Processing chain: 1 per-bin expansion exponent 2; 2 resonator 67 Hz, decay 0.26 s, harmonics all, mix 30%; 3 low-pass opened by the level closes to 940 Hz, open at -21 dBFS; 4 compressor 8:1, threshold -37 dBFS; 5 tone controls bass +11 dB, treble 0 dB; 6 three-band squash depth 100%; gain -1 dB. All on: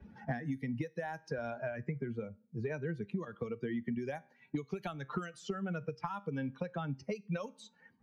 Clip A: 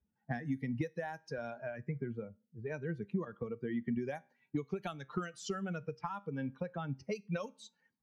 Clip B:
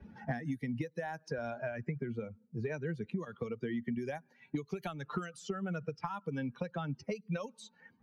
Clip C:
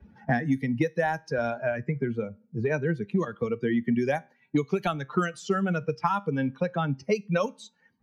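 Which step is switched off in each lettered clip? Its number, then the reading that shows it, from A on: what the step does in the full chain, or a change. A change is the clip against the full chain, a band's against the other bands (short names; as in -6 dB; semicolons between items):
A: 6, momentary loudness spread change +1 LU; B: 2, 8 kHz band +2.5 dB; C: 4, 125 Hz band -2.0 dB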